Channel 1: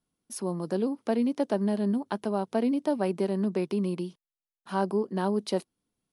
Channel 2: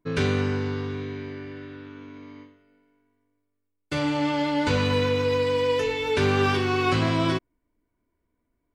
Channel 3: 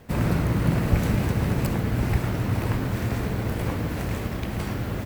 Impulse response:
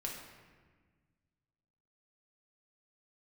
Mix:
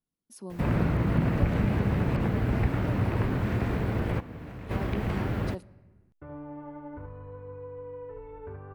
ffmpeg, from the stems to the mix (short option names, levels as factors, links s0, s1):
-filter_complex "[0:a]lowshelf=f=260:g=5.5,volume=0.251,asplit=3[s0][s1][s2];[s1]volume=0.106[s3];[1:a]asubboost=boost=9:cutoff=63,lowpass=f=1300:w=0.5412,lowpass=f=1300:w=1.3066,acompressor=threshold=0.0562:ratio=6,adelay=2300,volume=0.178,asplit=2[s4][s5];[s5]volume=0.631[s6];[2:a]acrossover=split=3300[s7][s8];[s8]acompressor=threshold=0.00141:ratio=4:attack=1:release=60[s9];[s7][s9]amix=inputs=2:normalize=0,adelay=500,volume=1.26,asplit=2[s10][s11];[s11]volume=0.0841[s12];[s2]apad=whole_len=244860[s13];[s10][s13]sidechaingate=range=0.112:threshold=0.00158:ratio=16:detection=peak[s14];[3:a]atrim=start_sample=2205[s15];[s3][s12]amix=inputs=2:normalize=0[s16];[s16][s15]afir=irnorm=-1:irlink=0[s17];[s6]aecho=0:1:75:1[s18];[s0][s4][s14][s17][s18]amix=inputs=5:normalize=0,acompressor=threshold=0.0316:ratio=1.5"